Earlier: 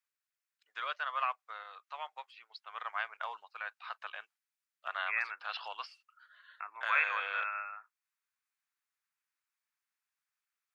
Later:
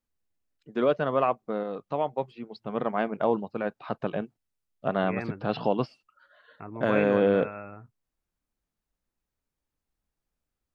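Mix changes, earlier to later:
second voice −7.0 dB
master: remove high-pass filter 1,200 Hz 24 dB per octave

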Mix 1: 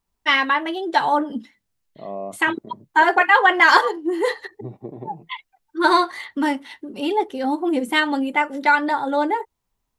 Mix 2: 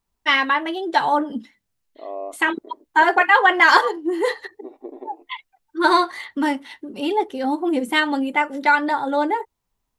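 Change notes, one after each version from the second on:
second voice: add linear-phase brick-wall high-pass 250 Hz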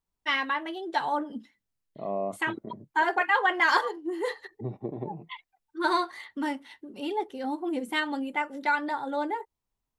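first voice −9.5 dB
second voice: remove linear-phase brick-wall high-pass 250 Hz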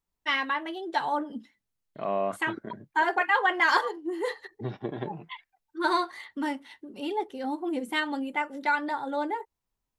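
second voice: remove moving average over 28 samples

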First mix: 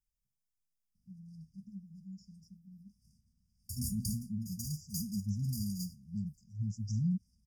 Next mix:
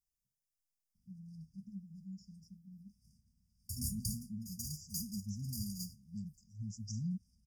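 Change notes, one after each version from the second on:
second voice: add bass and treble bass −8 dB, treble +3 dB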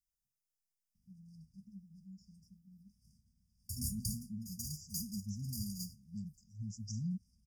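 first voice −5.5 dB

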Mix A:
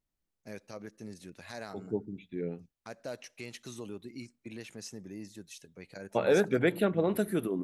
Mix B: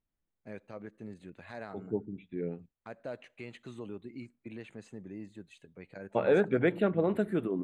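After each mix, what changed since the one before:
master: add moving average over 8 samples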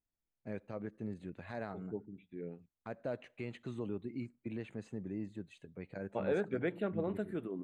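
first voice: add spectral tilt −1.5 dB per octave
second voice −8.5 dB

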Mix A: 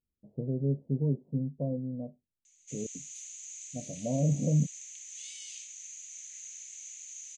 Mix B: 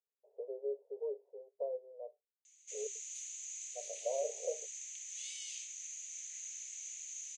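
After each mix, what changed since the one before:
master: add Chebyshev high-pass filter 400 Hz, order 10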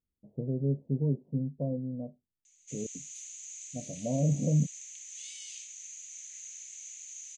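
master: remove Chebyshev high-pass filter 400 Hz, order 10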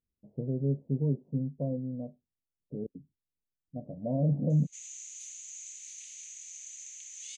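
background: entry +2.05 s

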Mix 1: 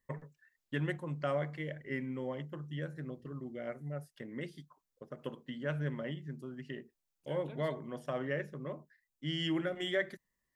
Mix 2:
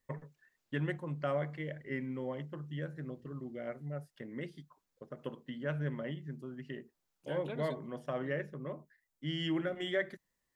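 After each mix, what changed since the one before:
second voice +10.0 dB
master: add high-shelf EQ 4,300 Hz −7 dB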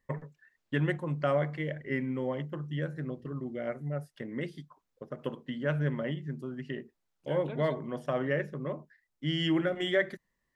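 first voice +6.0 dB
second voice: add high-shelf EQ 7,000 Hz −10 dB

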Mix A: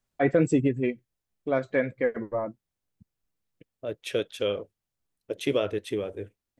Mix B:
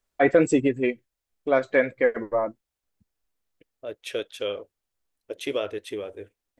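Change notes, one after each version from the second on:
first voice +6.5 dB
master: add parametric band 140 Hz −12 dB 1.7 octaves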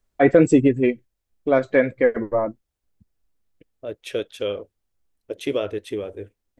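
master: add low-shelf EQ 350 Hz +10.5 dB

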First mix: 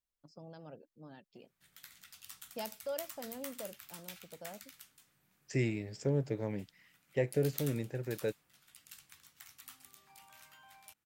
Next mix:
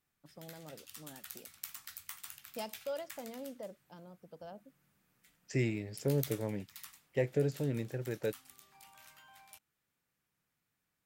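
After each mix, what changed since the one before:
background: entry −1.35 s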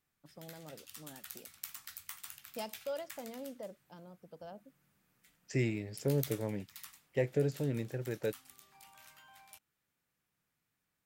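nothing changed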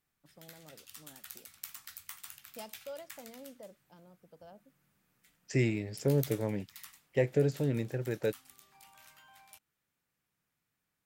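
first voice −5.0 dB
second voice +3.5 dB

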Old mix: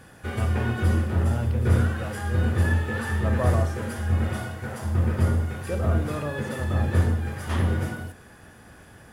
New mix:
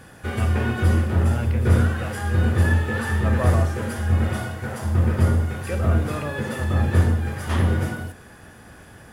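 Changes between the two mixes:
speech: add parametric band 2,100 Hz +12.5 dB 0.86 octaves
background +3.5 dB

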